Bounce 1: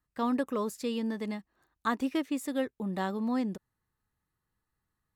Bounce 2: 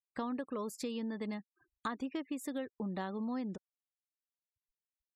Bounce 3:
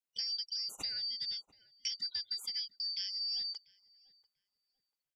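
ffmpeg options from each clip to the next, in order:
ffmpeg -i in.wav -af "acompressor=threshold=-40dB:ratio=5,afftfilt=real='re*gte(hypot(re,im),0.00112)':imag='im*gte(hypot(re,im),0.00112)':win_size=1024:overlap=0.75,volume=3.5dB" out.wav
ffmpeg -i in.wav -filter_complex "[0:a]afftfilt=real='real(if(lt(b,272),68*(eq(floor(b/68),0)*3+eq(floor(b/68),1)*2+eq(floor(b/68),2)*1+eq(floor(b/68),3)*0)+mod(b,68),b),0)':imag='imag(if(lt(b,272),68*(eq(floor(b/68),0)*3+eq(floor(b/68),1)*2+eq(floor(b/68),2)*1+eq(floor(b/68),3)*0)+mod(b,68),b),0)':win_size=2048:overlap=0.75,asplit=2[link_01][link_02];[link_02]adelay=691,lowpass=frequency=1300:poles=1,volume=-18dB,asplit=2[link_03][link_04];[link_04]adelay=691,lowpass=frequency=1300:poles=1,volume=0.36,asplit=2[link_05][link_06];[link_06]adelay=691,lowpass=frequency=1300:poles=1,volume=0.36[link_07];[link_01][link_03][link_05][link_07]amix=inputs=4:normalize=0" out.wav

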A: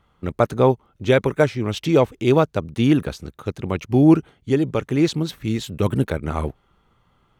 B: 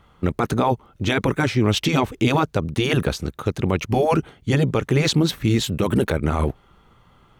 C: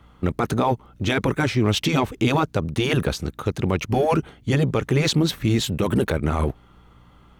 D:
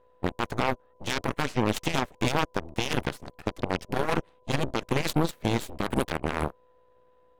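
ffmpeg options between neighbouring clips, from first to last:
ffmpeg -i in.wav -af "afftfilt=real='re*lt(hypot(re,im),0.891)':imag='im*lt(hypot(re,im),0.891)':win_size=1024:overlap=0.75,alimiter=limit=-16.5dB:level=0:latency=1:release=42,volume=7.5dB" out.wav
ffmpeg -i in.wav -filter_complex "[0:a]asplit=2[link_01][link_02];[link_02]volume=24.5dB,asoftclip=hard,volume=-24.5dB,volume=-11dB[link_03];[link_01][link_03]amix=inputs=2:normalize=0,aeval=exprs='val(0)+0.00316*(sin(2*PI*60*n/s)+sin(2*PI*2*60*n/s)/2+sin(2*PI*3*60*n/s)/3+sin(2*PI*4*60*n/s)/4+sin(2*PI*5*60*n/s)/5)':channel_layout=same,volume=-2dB" out.wav
ffmpeg -i in.wav -af "aeval=exprs='val(0)+0.0158*sin(2*PI*500*n/s)':channel_layout=same,aeval=exprs='0.316*(cos(1*acos(clip(val(0)/0.316,-1,1)))-cos(1*PI/2))+0.112*(cos(3*acos(clip(val(0)/0.316,-1,1)))-cos(3*PI/2))+0.0251*(cos(4*acos(clip(val(0)/0.316,-1,1)))-cos(4*PI/2))+0.01*(cos(8*acos(clip(val(0)/0.316,-1,1)))-cos(8*PI/2))':channel_layout=same,volume=-2dB" out.wav

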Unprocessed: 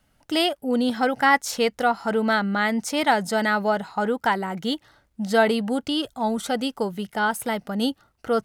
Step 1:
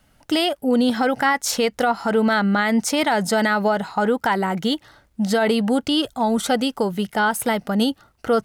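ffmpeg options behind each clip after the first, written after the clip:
ffmpeg -i in.wav -af "alimiter=limit=-17dB:level=0:latency=1:release=92,volume=6.5dB" out.wav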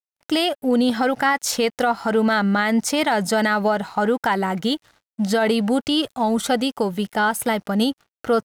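ffmpeg -i in.wav -af "aeval=exprs='sgn(val(0))*max(abs(val(0))-0.00376,0)':channel_layout=same" out.wav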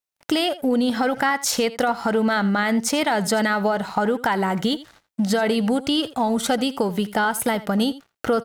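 ffmpeg -i in.wav -af "acompressor=threshold=-28dB:ratio=2.5,aecho=1:1:83:0.141,volume=6.5dB" out.wav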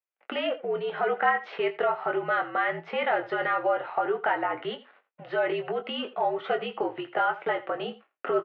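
ffmpeg -i in.wav -filter_complex "[0:a]flanger=delay=7.3:depth=3.6:regen=-47:speed=0.39:shape=sinusoidal,asplit=2[link_01][link_02];[link_02]adelay=22,volume=-8.5dB[link_03];[link_01][link_03]amix=inputs=2:normalize=0,highpass=frequency=430:width_type=q:width=0.5412,highpass=frequency=430:width_type=q:width=1.307,lowpass=frequency=2800:width_type=q:width=0.5176,lowpass=frequency=2800:width_type=q:width=0.7071,lowpass=frequency=2800:width_type=q:width=1.932,afreqshift=-63" out.wav

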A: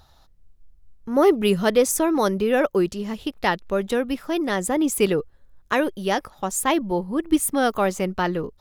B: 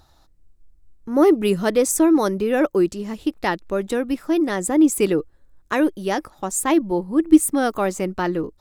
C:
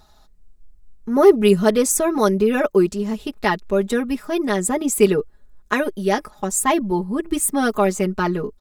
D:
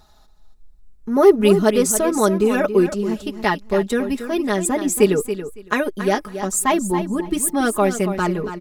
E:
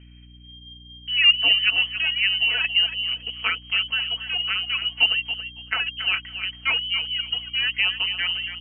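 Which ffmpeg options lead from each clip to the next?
ffmpeg -i in.wav -af "equalizer=frequency=315:width_type=o:width=0.33:gain=9,equalizer=frequency=3150:width_type=o:width=0.33:gain=-4,equalizer=frequency=8000:width_type=o:width=0.33:gain=6,volume=-1dB" out.wav
ffmpeg -i in.wav -af "aecho=1:1:4.8:0.92" out.wav
ffmpeg -i in.wav -af "aecho=1:1:279|558:0.299|0.0508" out.wav
ffmpeg -i in.wav -af "lowpass=frequency=2700:width_type=q:width=0.5098,lowpass=frequency=2700:width_type=q:width=0.6013,lowpass=frequency=2700:width_type=q:width=0.9,lowpass=frequency=2700:width_type=q:width=2.563,afreqshift=-3200,aeval=exprs='val(0)+0.00891*(sin(2*PI*60*n/s)+sin(2*PI*2*60*n/s)/2+sin(2*PI*3*60*n/s)/3+sin(2*PI*4*60*n/s)/4+sin(2*PI*5*60*n/s)/5)':channel_layout=same,volume=-5dB" out.wav

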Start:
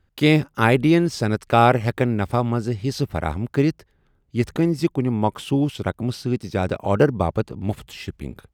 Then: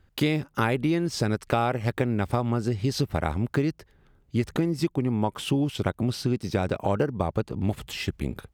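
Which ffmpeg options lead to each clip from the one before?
ffmpeg -i in.wav -af "acompressor=threshold=-25dB:ratio=6,volume=3.5dB" out.wav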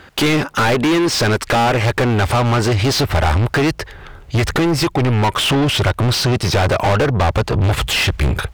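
ffmpeg -i in.wav -filter_complex "[0:a]asubboost=boost=12:cutoff=68,asplit=2[link_01][link_02];[link_02]highpass=frequency=720:poles=1,volume=37dB,asoftclip=type=tanh:threshold=-7dB[link_03];[link_01][link_03]amix=inputs=2:normalize=0,lowpass=frequency=1000:poles=1,volume=-6dB,highshelf=frequency=2000:gain=11" out.wav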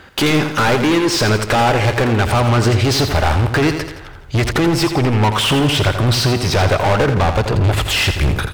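ffmpeg -i in.wav -af "aecho=1:1:84|168|252|336|420|504:0.376|0.184|0.0902|0.0442|0.0217|0.0106" out.wav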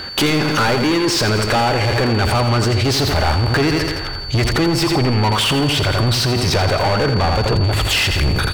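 ffmpeg -i in.wav -filter_complex "[0:a]asplit=2[link_01][link_02];[link_02]acompressor=threshold=-21dB:ratio=6,volume=1dB[link_03];[link_01][link_03]amix=inputs=2:normalize=0,alimiter=limit=-13dB:level=0:latency=1:release=19,aeval=exprs='val(0)+0.0316*sin(2*PI*4500*n/s)':channel_layout=same,volume=2dB" out.wav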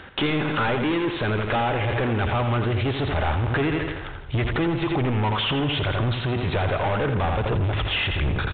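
ffmpeg -i in.wav -af "aeval=exprs='sgn(val(0))*max(abs(val(0))-0.015,0)':channel_layout=same,aresample=8000,aresample=44100,volume=-6dB" out.wav

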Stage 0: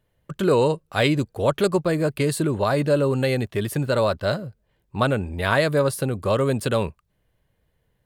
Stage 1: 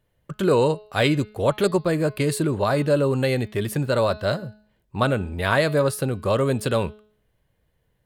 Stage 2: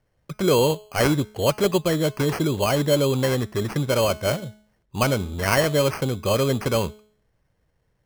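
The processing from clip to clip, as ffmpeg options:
ffmpeg -i in.wav -af "bandreject=frequency=212.2:width_type=h:width=4,bandreject=frequency=424.4:width_type=h:width=4,bandreject=frequency=636.6:width_type=h:width=4,bandreject=frequency=848.8:width_type=h:width=4,bandreject=frequency=1061:width_type=h:width=4,bandreject=frequency=1273.2:width_type=h:width=4,bandreject=frequency=1485.4:width_type=h:width=4,bandreject=frequency=1697.6:width_type=h:width=4,bandreject=frequency=1909.8:width_type=h:width=4,bandreject=frequency=2122:width_type=h:width=4,bandreject=frequency=2334.2:width_type=h:width=4,bandreject=frequency=2546.4:width_type=h:width=4,bandreject=frequency=2758.6:width_type=h:width=4,bandreject=frequency=2970.8:width_type=h:width=4,bandreject=frequency=3183:width_type=h:width=4,bandreject=frequency=3395.2:width_type=h:width=4,bandreject=frequency=3607.4:width_type=h:width=4,bandreject=frequency=3819.6:width_type=h:width=4,bandreject=frequency=4031.8:width_type=h:width=4,bandreject=frequency=4244:width_type=h:width=4,bandreject=frequency=4456.2:width_type=h:width=4,bandreject=frequency=4668.4:width_type=h:width=4,bandreject=frequency=4880.6:width_type=h:width=4,bandreject=frequency=5092.8:width_type=h:width=4,bandreject=frequency=5305:width_type=h:width=4" out.wav
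ffmpeg -i in.wav -af "acrusher=samples=12:mix=1:aa=0.000001" out.wav

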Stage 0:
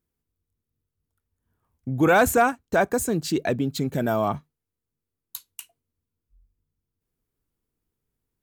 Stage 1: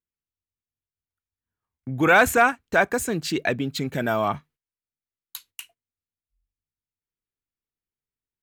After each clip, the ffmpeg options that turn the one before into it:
ffmpeg -i in.wav -af "agate=range=-15dB:threshold=-53dB:ratio=16:detection=peak,equalizer=frequency=2200:width_type=o:width=2:gain=10,volume=-2.5dB" out.wav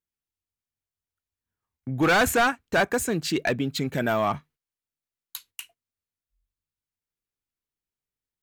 ffmpeg -i in.wav -af "volume=16.5dB,asoftclip=hard,volume=-16.5dB" out.wav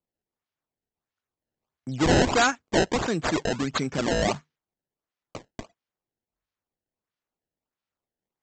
ffmpeg -i in.wav -af "highpass=120,aemphasis=mode=production:type=50fm,aresample=16000,acrusher=samples=8:mix=1:aa=0.000001:lfo=1:lforange=12.8:lforate=1.5,aresample=44100" out.wav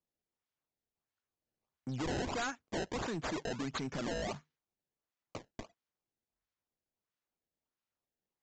ffmpeg -i in.wav -af "acompressor=threshold=-29dB:ratio=2.5,aresample=16000,volume=29dB,asoftclip=hard,volume=-29dB,aresample=44100,volume=-4.5dB" out.wav

